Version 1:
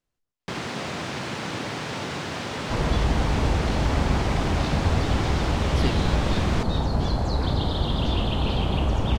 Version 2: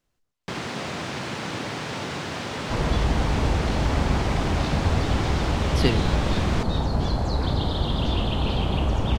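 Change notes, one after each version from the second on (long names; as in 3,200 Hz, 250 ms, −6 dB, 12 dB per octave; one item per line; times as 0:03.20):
speech +7.0 dB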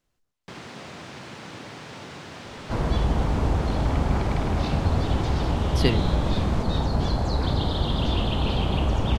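first sound −9.0 dB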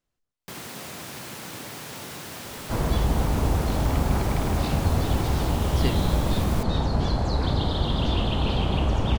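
speech −6.5 dB
first sound: remove high-frequency loss of the air 120 metres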